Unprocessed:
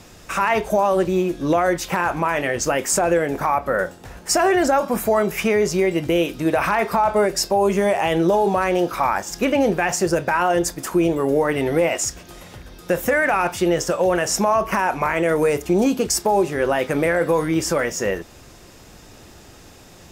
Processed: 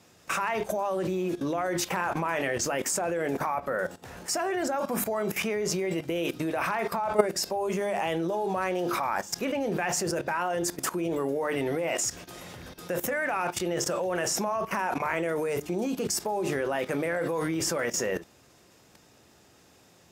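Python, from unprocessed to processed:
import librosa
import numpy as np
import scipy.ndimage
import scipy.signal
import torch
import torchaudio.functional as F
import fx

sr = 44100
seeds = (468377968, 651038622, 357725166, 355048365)

y = scipy.signal.sosfilt(scipy.signal.butter(2, 100.0, 'highpass', fs=sr, output='sos'), x)
y = fx.hum_notches(y, sr, base_hz=50, count=7)
y = fx.level_steps(y, sr, step_db=15)
y = F.gain(torch.from_numpy(y), 1.5).numpy()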